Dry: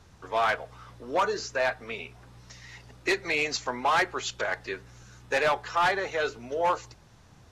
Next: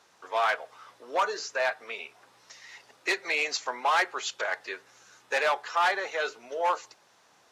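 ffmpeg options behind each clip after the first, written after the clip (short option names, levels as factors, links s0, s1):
-af "highpass=510"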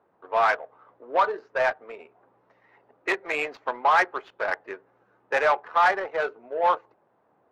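-af "adynamicsmooth=sensitivity=1.5:basefreq=680,bass=f=250:g=-5,treble=f=4000:g=-10,volume=1.88"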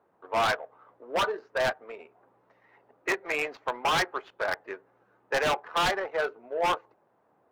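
-af "aeval=exprs='0.126*(abs(mod(val(0)/0.126+3,4)-2)-1)':c=same,volume=0.841"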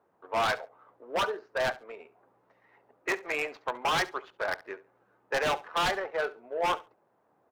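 -af "aecho=1:1:69|138:0.112|0.0191,volume=0.794"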